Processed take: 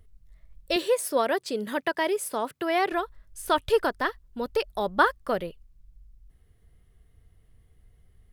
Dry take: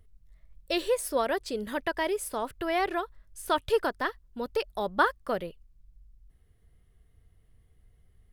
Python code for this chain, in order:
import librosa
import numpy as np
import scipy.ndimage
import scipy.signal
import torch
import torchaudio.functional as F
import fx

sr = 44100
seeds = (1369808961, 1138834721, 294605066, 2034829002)

y = fx.highpass(x, sr, hz=130.0, slope=24, at=(0.76, 2.92))
y = F.gain(torch.from_numpy(y), 3.0).numpy()